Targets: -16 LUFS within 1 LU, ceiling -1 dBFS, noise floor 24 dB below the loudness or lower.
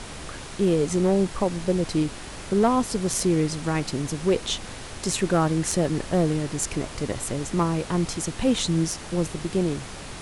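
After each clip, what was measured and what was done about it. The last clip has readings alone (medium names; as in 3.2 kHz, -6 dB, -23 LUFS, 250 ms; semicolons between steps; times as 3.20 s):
clipped samples 0.3%; clipping level -13.0 dBFS; noise floor -38 dBFS; noise floor target -49 dBFS; loudness -25.0 LUFS; peak level -13.0 dBFS; loudness target -16.0 LUFS
-> clip repair -13 dBFS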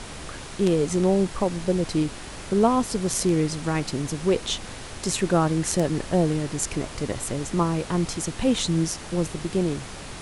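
clipped samples 0.0%; noise floor -38 dBFS; noise floor target -49 dBFS
-> noise print and reduce 11 dB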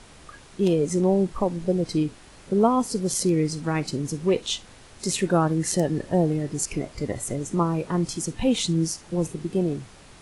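noise floor -49 dBFS; loudness -25.0 LUFS; peak level -7.0 dBFS; loudness target -16.0 LUFS
-> trim +9 dB; peak limiter -1 dBFS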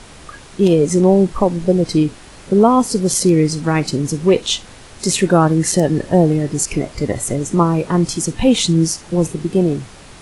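loudness -16.0 LUFS; peak level -1.0 dBFS; noise floor -40 dBFS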